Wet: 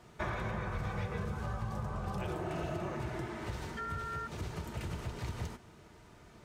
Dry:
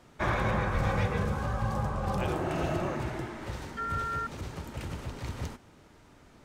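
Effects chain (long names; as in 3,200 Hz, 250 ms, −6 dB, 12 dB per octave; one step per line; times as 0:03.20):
downward compressor 4 to 1, threshold −35 dBFS, peak gain reduction 10 dB
notch comb filter 270 Hz
level +1 dB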